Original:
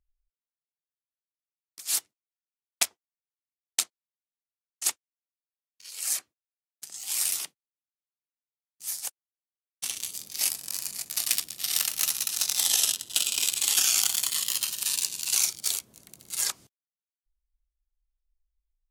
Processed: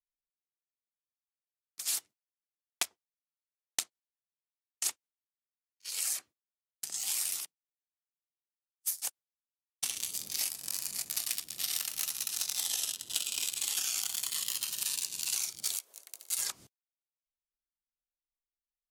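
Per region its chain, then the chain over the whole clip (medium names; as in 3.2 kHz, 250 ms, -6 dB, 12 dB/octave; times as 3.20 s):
7.40–9.02 s: treble shelf 7.2 kHz +7 dB + upward expansion 2.5:1, over -44 dBFS
15.75–16.38 s: high-pass 470 Hz 24 dB/octave + treble shelf 5.5 kHz +5.5 dB
whole clip: expander -43 dBFS; compression 6:1, threshold -35 dBFS; trim +4.5 dB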